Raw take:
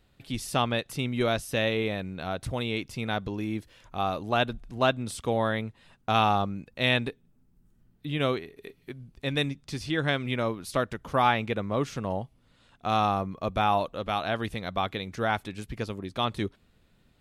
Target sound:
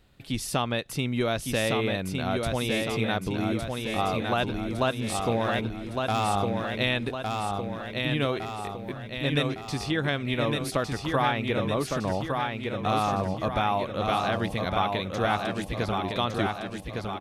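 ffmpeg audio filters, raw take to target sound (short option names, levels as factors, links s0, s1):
-filter_complex "[0:a]acompressor=threshold=0.0447:ratio=3,asettb=1/sr,asplit=3[s0][s1][s2];[s0]atrim=end=5.324[s3];[s1]atrim=start=5.32:end=6.28,asetpts=PTS-STARTPTS,afade=t=in:d=0.004:c=qsin,afade=t=out:st=0.956:d=0.004:c=qsin,asoftclip=type=hard:threshold=0.0596[s4];[s2]atrim=start=6.276[s5];[s3][s4]acrossfade=d=0.004:c1=hsin:c2=qsin[s6];[s6][s5]acrossfade=d=0.004:c1=qsin:c2=hsin,aecho=1:1:1159|2318|3477|4636|5795|6954|8113:0.631|0.341|0.184|0.0994|0.0537|0.029|0.0156,volume=1.5"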